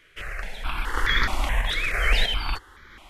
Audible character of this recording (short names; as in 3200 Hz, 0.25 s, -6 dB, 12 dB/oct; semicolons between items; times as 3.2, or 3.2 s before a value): random-step tremolo 3.1 Hz, depth 75%; notches that jump at a steady rate 4.7 Hz 220–2700 Hz